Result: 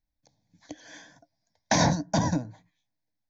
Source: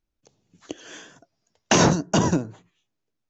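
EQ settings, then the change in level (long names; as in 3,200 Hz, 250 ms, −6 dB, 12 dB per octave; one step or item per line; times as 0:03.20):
parametric band 300 Hz +10 dB 0.2 octaves
phaser with its sweep stopped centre 1,900 Hz, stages 8
−2.0 dB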